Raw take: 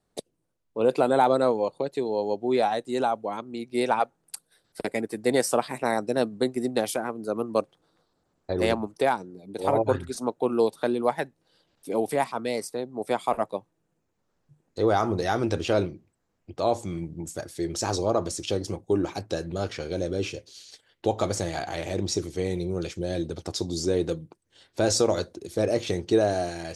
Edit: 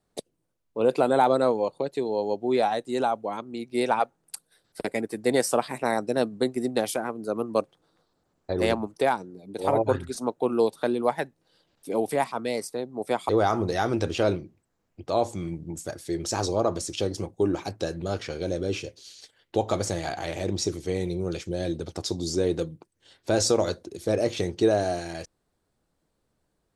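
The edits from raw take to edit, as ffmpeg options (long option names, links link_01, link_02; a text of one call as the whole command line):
ffmpeg -i in.wav -filter_complex "[0:a]asplit=2[link_01][link_02];[link_01]atrim=end=13.292[link_03];[link_02]atrim=start=14.788[link_04];[link_03][link_04]acrossfade=duration=0.004:curve1=hsin:curve2=hsin" out.wav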